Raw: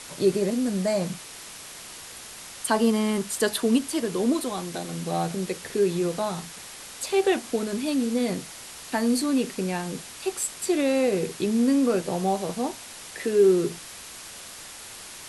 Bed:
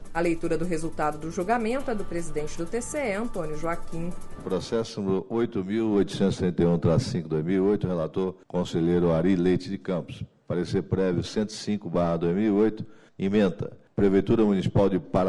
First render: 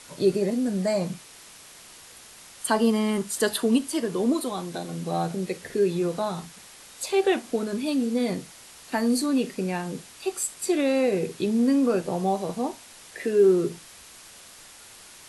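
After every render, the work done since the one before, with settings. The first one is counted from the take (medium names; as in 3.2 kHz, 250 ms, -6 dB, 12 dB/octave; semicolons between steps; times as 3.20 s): noise print and reduce 6 dB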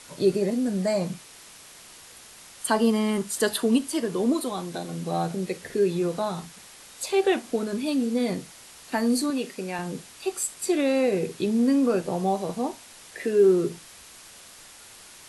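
9.30–9.79 s: bass shelf 250 Hz -11.5 dB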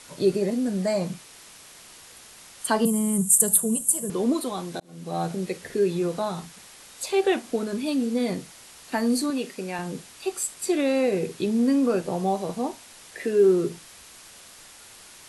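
2.85–4.10 s: FFT filter 130 Hz 0 dB, 180 Hz +13 dB, 280 Hz -18 dB, 410 Hz -5 dB, 1.1 kHz -10 dB, 1.7 kHz -15 dB, 3.3 kHz -12 dB, 4.9 kHz -16 dB, 7.7 kHz +15 dB; 4.80–5.25 s: fade in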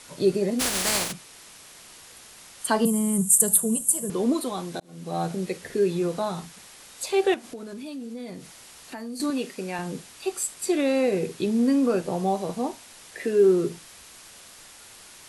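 0.59–1.11 s: spectral contrast reduction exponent 0.26; 7.34–9.20 s: compression 3:1, threshold -37 dBFS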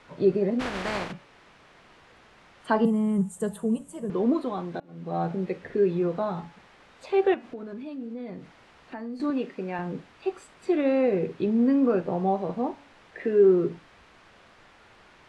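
low-pass 2 kHz 12 dB/octave; de-hum 283.5 Hz, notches 10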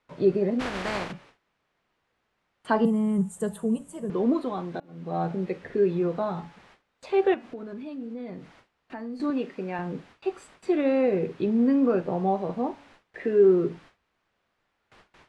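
gate with hold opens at -43 dBFS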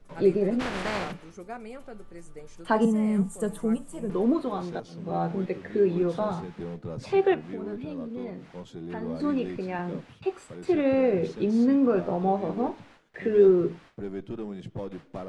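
add bed -14.5 dB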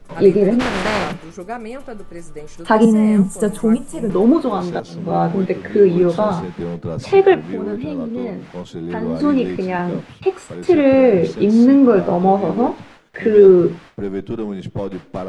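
trim +11 dB; peak limiter -1 dBFS, peak gain reduction 2.5 dB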